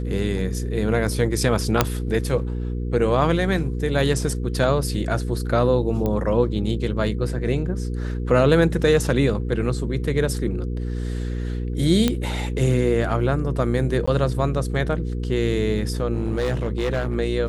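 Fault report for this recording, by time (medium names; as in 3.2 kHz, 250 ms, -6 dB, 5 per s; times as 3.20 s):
hum 60 Hz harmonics 8 -26 dBFS
1.81 s: pop 0 dBFS
6.06 s: pop -13 dBFS
12.08 s: pop -6 dBFS
14.06–14.07 s: dropout 15 ms
16.13–17.16 s: clipped -18 dBFS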